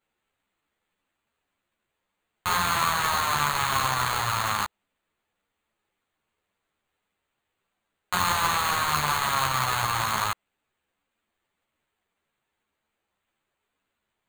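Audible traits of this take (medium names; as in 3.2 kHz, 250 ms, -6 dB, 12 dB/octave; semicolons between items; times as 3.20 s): aliases and images of a low sample rate 5.4 kHz, jitter 0%; a shimmering, thickened sound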